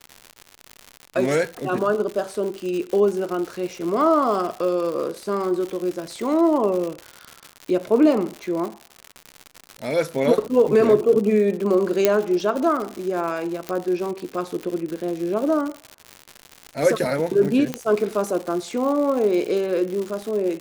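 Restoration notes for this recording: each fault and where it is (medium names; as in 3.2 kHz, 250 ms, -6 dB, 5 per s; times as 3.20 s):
crackle 150 per s -27 dBFS
12.05 s: pop -2 dBFS
13.69 s: pop -13 dBFS
17.74 s: pop -10 dBFS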